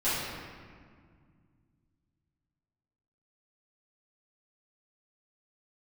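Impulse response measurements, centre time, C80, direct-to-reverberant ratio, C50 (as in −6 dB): 118 ms, 0.5 dB, −14.5 dB, −2.0 dB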